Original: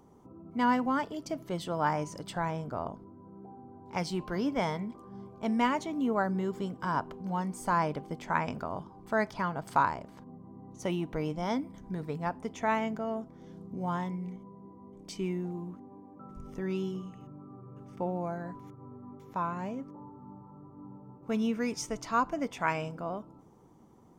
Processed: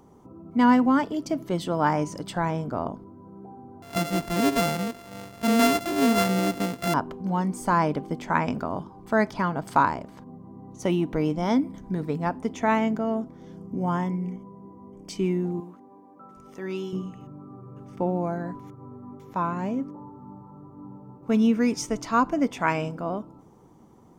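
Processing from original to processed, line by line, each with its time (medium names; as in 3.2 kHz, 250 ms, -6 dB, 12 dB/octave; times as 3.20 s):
3.82–6.94 s: sorted samples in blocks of 64 samples
13.56–15.10 s: Butterworth band-stop 3.9 kHz, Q 3.7
15.60–16.93 s: high-pass 540 Hz 6 dB/octave
whole clip: dynamic bell 270 Hz, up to +6 dB, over -45 dBFS, Q 1.3; trim +5 dB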